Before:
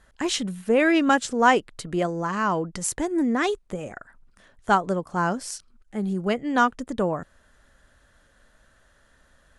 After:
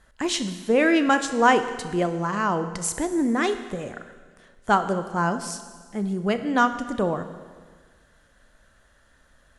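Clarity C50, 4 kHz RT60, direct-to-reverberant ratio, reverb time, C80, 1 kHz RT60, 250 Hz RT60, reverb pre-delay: 11.0 dB, 1.6 s, 9.5 dB, 1.6 s, 12.5 dB, 1.6 s, 1.6 s, 30 ms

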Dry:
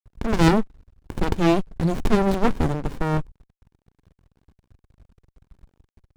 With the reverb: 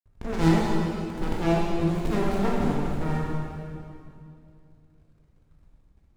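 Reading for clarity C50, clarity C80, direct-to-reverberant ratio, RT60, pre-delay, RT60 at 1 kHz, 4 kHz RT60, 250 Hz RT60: -1.5 dB, 0.0 dB, -4.5 dB, 2.5 s, 13 ms, 2.3 s, 2.3 s, 2.9 s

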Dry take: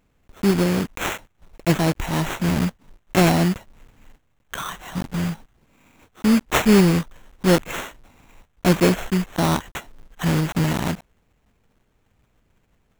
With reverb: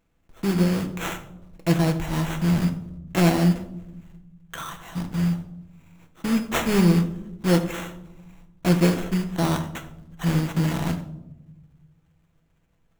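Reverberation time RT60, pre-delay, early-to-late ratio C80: not exponential, 6 ms, 13.5 dB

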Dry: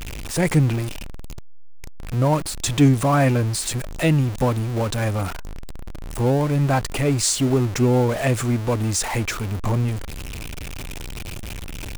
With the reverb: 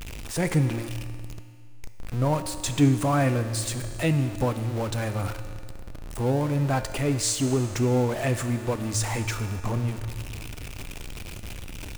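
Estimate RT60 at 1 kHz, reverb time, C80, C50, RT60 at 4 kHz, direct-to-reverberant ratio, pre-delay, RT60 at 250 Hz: 2.1 s, 2.1 s, 11.0 dB, 10.0 dB, 2.1 s, 8.5 dB, 3 ms, 2.1 s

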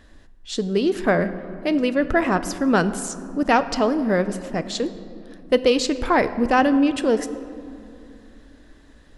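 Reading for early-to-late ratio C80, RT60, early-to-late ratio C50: 14.0 dB, 2.6 s, 13.0 dB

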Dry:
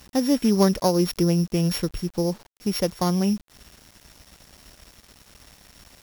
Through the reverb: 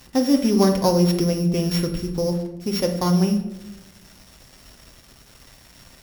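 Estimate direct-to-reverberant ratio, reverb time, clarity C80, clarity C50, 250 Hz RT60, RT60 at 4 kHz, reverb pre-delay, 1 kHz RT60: 3.0 dB, 1.0 s, 11.0 dB, 8.0 dB, 1.3 s, 0.55 s, 8 ms, 0.80 s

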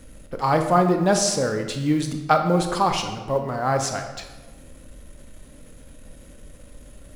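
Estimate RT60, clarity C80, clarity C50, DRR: 1.3 s, 9.5 dB, 7.0 dB, 5.5 dB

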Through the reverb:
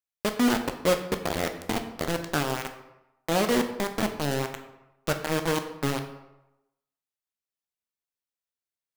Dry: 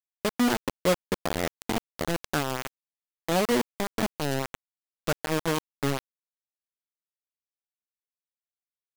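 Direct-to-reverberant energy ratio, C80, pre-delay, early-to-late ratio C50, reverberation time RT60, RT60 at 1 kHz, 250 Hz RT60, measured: 6.0 dB, 12.0 dB, 9 ms, 9.5 dB, 0.90 s, 0.95 s, 0.85 s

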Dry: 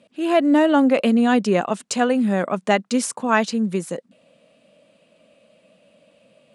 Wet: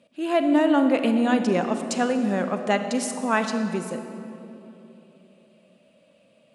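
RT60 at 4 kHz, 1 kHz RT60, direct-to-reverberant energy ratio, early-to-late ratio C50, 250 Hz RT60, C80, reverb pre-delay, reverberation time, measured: 1.8 s, 2.8 s, 7.0 dB, 7.5 dB, 3.8 s, 8.5 dB, 34 ms, 3.0 s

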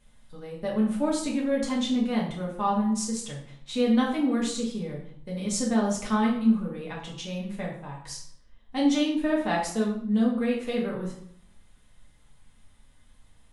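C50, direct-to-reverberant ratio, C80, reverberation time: 5.0 dB, -4.0 dB, 9.0 dB, 0.65 s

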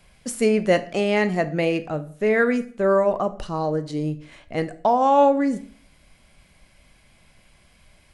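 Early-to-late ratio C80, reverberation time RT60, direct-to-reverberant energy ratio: 20.0 dB, 0.50 s, 11.5 dB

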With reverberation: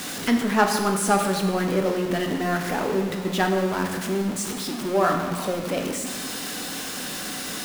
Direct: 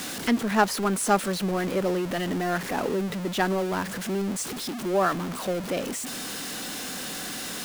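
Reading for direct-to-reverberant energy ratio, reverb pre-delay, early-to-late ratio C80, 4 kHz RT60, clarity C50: 3.0 dB, 14 ms, 7.0 dB, 1.1 s, 5.5 dB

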